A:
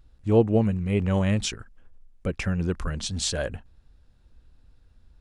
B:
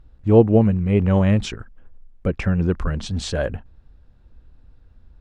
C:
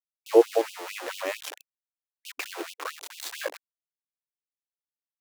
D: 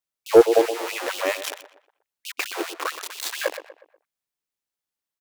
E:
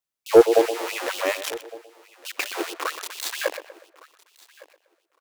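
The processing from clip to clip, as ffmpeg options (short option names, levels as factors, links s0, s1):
-af "lowpass=f=1600:p=1,volume=2.11"
-af "aeval=exprs='val(0)*gte(abs(val(0)),0.0562)':c=same,afftfilt=real='re*gte(b*sr/1024,270*pow(2600/270,0.5+0.5*sin(2*PI*4.5*pts/sr)))':imag='im*gte(b*sr/1024,270*pow(2600/270,0.5+0.5*sin(2*PI*4.5*pts/sr)))':win_size=1024:overlap=0.75,volume=0.794"
-filter_complex "[0:a]asplit=2[s0][s1];[s1]adelay=121,lowpass=f=2300:p=1,volume=0.251,asplit=2[s2][s3];[s3]adelay=121,lowpass=f=2300:p=1,volume=0.43,asplit=2[s4][s5];[s5]adelay=121,lowpass=f=2300:p=1,volume=0.43,asplit=2[s6][s7];[s7]adelay=121,lowpass=f=2300:p=1,volume=0.43[s8];[s0][s2][s4][s6][s8]amix=inputs=5:normalize=0,acontrast=77"
-af "aecho=1:1:1160|2320:0.075|0.0112"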